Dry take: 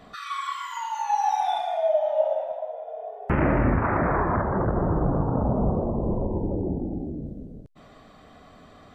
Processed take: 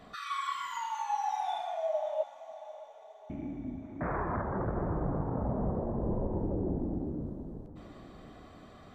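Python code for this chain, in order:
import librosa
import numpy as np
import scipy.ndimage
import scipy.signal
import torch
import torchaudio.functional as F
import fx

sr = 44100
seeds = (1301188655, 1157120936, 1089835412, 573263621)

p1 = fx.rider(x, sr, range_db=4, speed_s=0.5)
p2 = fx.formant_cascade(p1, sr, vowel='i', at=(2.23, 4.01))
p3 = p2 + fx.echo_diffused(p2, sr, ms=627, feedback_pct=50, wet_db=-15.0, dry=0)
y = F.gain(torch.from_numpy(p3), -8.0).numpy()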